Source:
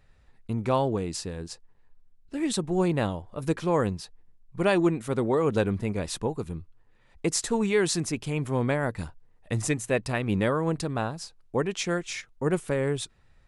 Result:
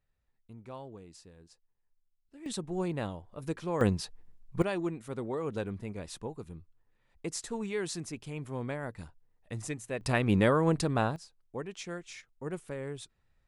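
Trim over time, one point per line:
-20 dB
from 2.46 s -8.5 dB
from 3.81 s +2 dB
from 4.62 s -10.5 dB
from 10.01 s +0.5 dB
from 11.16 s -12 dB

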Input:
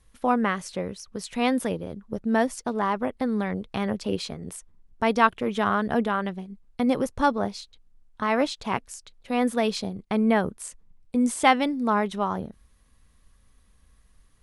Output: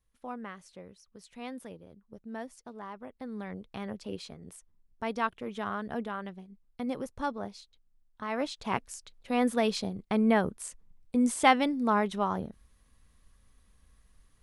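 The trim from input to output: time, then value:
3.04 s -17.5 dB
3.51 s -11 dB
8.25 s -11 dB
8.77 s -3 dB

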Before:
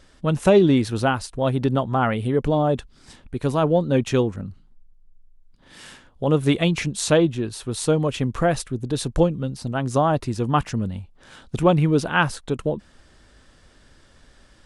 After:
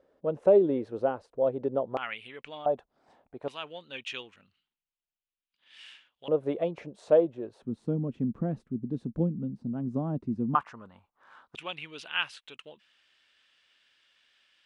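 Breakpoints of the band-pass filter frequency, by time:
band-pass filter, Q 3.1
510 Hz
from 1.97 s 2.5 kHz
from 2.66 s 690 Hz
from 3.48 s 2.8 kHz
from 6.28 s 560 Hz
from 7.62 s 220 Hz
from 10.55 s 1.1 kHz
from 11.55 s 2.8 kHz

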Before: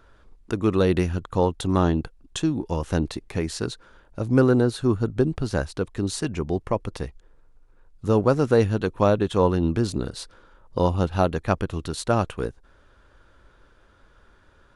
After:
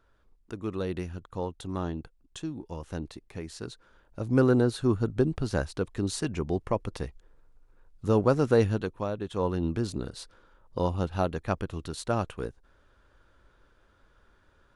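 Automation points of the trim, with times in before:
3.47 s -12 dB
4.50 s -3.5 dB
8.72 s -3.5 dB
9.08 s -13.5 dB
9.60 s -6.5 dB

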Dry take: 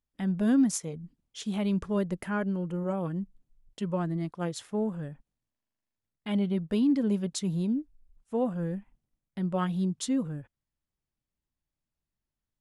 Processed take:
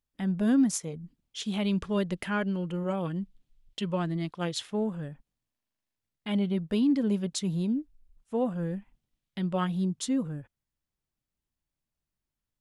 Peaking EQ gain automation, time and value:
peaking EQ 3.3 kHz 1.4 oct
0.93 s +1.5 dB
2.11 s +11 dB
4.56 s +11 dB
5.07 s +3 dB
8.68 s +3 dB
9.45 s +11.5 dB
9.71 s +0.5 dB

